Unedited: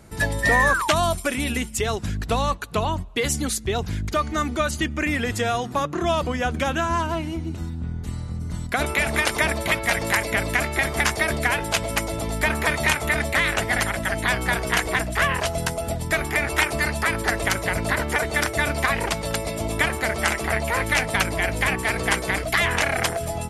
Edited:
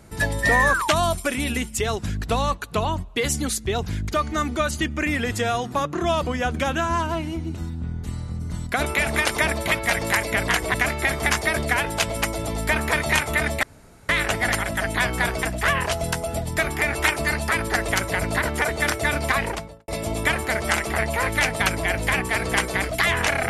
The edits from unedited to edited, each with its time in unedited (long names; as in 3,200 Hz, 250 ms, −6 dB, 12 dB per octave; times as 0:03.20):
0:13.37: splice in room tone 0.46 s
0:14.71–0:14.97: move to 0:10.48
0:18.90–0:19.42: fade out and dull